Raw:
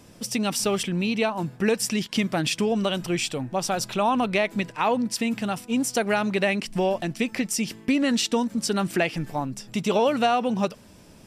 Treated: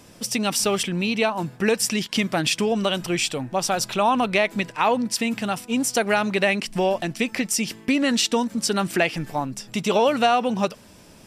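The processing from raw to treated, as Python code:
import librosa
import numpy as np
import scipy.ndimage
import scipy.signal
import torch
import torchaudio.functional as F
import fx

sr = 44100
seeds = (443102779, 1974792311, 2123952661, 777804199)

y = fx.low_shelf(x, sr, hz=430.0, db=-4.5)
y = y * 10.0 ** (4.0 / 20.0)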